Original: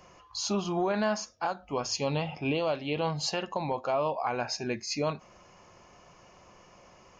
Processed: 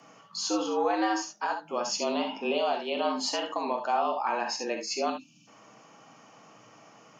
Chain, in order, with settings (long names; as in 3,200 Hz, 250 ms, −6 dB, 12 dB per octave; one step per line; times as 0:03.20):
gain on a spectral selection 0:05.10–0:05.47, 210–2,200 Hz −27 dB
frequency shifter +110 Hz
reverb whose tail is shaped and stops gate 90 ms rising, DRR 4 dB